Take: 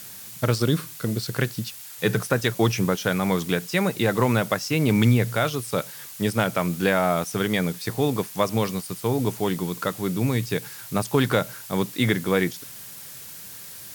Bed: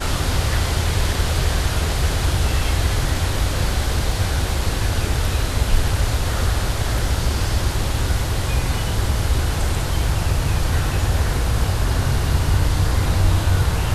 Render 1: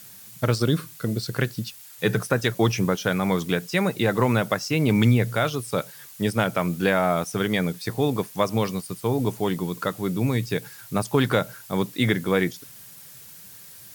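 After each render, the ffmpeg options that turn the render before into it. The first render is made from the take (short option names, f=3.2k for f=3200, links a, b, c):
-af "afftdn=nr=6:nf=-41"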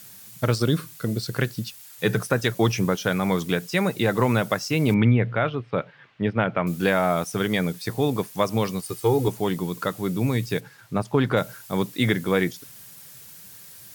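-filter_complex "[0:a]asettb=1/sr,asplit=3[a][b][c];[a]atrim=end=4.944[d];[b]atrim=start=4.94:end=6.67,asetpts=PTS-STARTPTS,afade=t=in:d=0.004:c=qsin,afade=t=out:st=1.726:d=0.004:c=qsin,lowpass=f=2.8k:w=0.5412,lowpass=f=2.8k:w=1.3066[e];[c]atrim=start=6.666[f];[d][e]acrossfade=d=0.004:c1=hsin:c2=qsin[g];[g][f]acrossfade=d=0.004:c1=qsin:c2=hsin,asettb=1/sr,asplit=3[h][i][j];[h]atrim=end=8.824[k];[i]atrim=start=8.82:end=9.28,asetpts=PTS-STARTPTS,afade=t=in:d=0.004:c=qsin,afade=t=out:st=0.456:d=0.004:c=qsin,aecho=1:1:2.4:0.97,atrim=end_sample=20286[l];[j]atrim=start=9.276[m];[k][l]acrossfade=d=0.004:c1=hsin:c2=qsin[n];[n][m]acrossfade=d=0.004:c1=qsin:c2=hsin,asplit=3[o][p][q];[o]afade=t=out:st=10.59:d=0.02[r];[p]lowpass=f=2k:p=1,afade=t=in:st=10.59:d=0.02,afade=t=out:st=11.36:d=0.02[s];[q]afade=t=in:st=11.36:d=0.02[t];[r][s][t]amix=inputs=3:normalize=0"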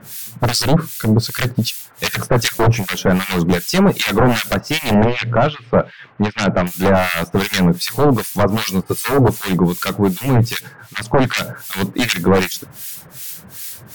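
-filter_complex "[0:a]aeval=exprs='0.501*sin(PI/2*4.47*val(0)/0.501)':c=same,acrossover=split=1500[a][b];[a]aeval=exprs='val(0)*(1-1/2+1/2*cos(2*PI*2.6*n/s))':c=same[c];[b]aeval=exprs='val(0)*(1-1/2-1/2*cos(2*PI*2.6*n/s))':c=same[d];[c][d]amix=inputs=2:normalize=0"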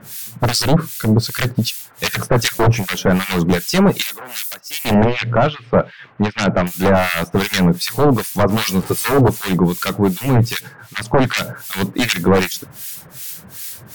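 -filter_complex "[0:a]asettb=1/sr,asplit=3[a][b][c];[a]atrim=end=4.024[d];[b]atrim=start=4.02:end=4.85,asetpts=PTS-STARTPTS,afade=t=in:d=0.004:c=qsin,afade=t=out:st=0.826:d=0.004:c=qsin,aderivative[e];[c]atrim=start=4.846[f];[d][e]acrossfade=d=0.004:c1=hsin:c2=qsin[g];[g][f]acrossfade=d=0.004:c1=qsin:c2=hsin,asettb=1/sr,asplit=3[h][i][j];[h]atrim=end=8.494[k];[i]atrim=start=8.49:end=9.21,asetpts=PTS-STARTPTS,afade=t=in:d=0.004:c=qsin,afade=t=out:st=0.716:d=0.004:c=qsin,aeval=exprs='val(0)+0.5*0.0447*sgn(val(0))':c=same[l];[j]atrim=start=9.206[m];[k][l]acrossfade=d=0.004:c1=hsin:c2=qsin[n];[n][m]acrossfade=d=0.004:c1=qsin:c2=hsin"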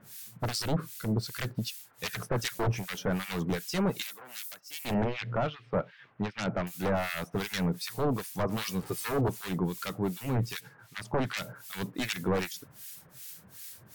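-af "volume=-15.5dB"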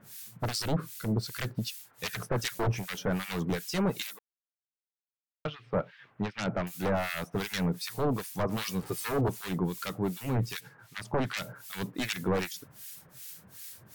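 -filter_complex "[0:a]asplit=3[a][b][c];[a]atrim=end=4.19,asetpts=PTS-STARTPTS,afade=t=out:st=4.186:d=0.004:c=hsin[d];[b]atrim=start=4.19:end=5.45,asetpts=PTS-STARTPTS,volume=0[e];[c]atrim=start=5.45,asetpts=PTS-STARTPTS,afade=t=in:d=0.004:c=hsin[f];[d][e][f]concat=n=3:v=0:a=1"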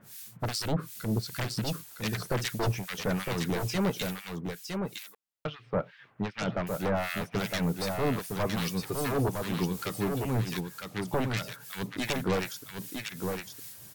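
-af "aecho=1:1:960:0.562"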